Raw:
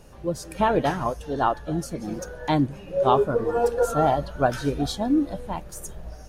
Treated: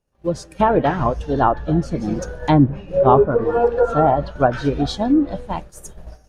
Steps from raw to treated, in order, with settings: 0.99–3.26 s: bass shelf 250 Hz +6.5 dB; expander -30 dBFS; low-pass that closes with the level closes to 1.5 kHz, closed at -16 dBFS; trim +5.5 dB

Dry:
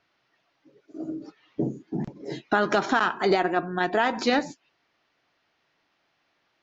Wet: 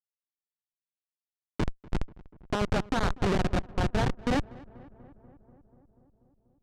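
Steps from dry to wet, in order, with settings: local Wiener filter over 41 samples; treble shelf 4 kHz +3 dB; in parallel at -1 dB: compression 16:1, threshold -31 dBFS, peak gain reduction 15 dB; on the sum: Schmitt trigger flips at -19 dBFS; distance through air 84 m; on a send: filtered feedback delay 243 ms, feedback 74%, low-pass 1.9 kHz, level -21.5 dB; on the sum: trim +3.5 dB

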